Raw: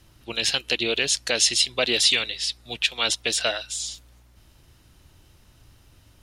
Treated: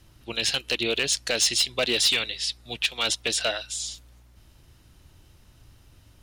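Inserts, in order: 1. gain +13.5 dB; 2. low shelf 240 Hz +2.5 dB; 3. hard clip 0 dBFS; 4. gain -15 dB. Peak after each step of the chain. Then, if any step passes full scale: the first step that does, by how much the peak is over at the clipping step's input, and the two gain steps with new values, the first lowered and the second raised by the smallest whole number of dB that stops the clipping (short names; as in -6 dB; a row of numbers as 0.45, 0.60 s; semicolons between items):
+7.5, +7.5, 0.0, -15.0 dBFS; step 1, 7.5 dB; step 1 +5.5 dB, step 4 -7 dB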